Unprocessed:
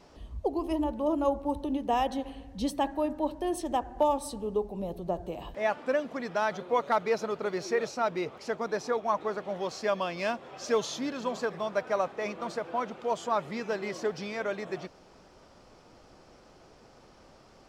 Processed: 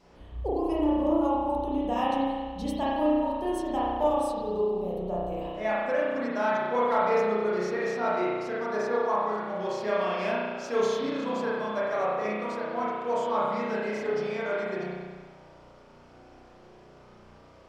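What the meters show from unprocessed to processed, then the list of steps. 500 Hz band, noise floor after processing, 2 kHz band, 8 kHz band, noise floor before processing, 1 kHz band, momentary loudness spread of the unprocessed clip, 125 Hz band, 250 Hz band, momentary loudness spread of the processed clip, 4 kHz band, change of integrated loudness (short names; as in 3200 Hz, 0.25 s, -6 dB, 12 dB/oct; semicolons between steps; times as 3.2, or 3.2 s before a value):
+3.0 dB, -53 dBFS, +2.5 dB, n/a, -57 dBFS, +2.5 dB, 7 LU, +3.0 dB, +4.0 dB, 7 LU, -1.0 dB, +3.0 dB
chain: spring tank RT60 1.5 s, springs 33 ms, chirp 65 ms, DRR -7.5 dB; gain -5.5 dB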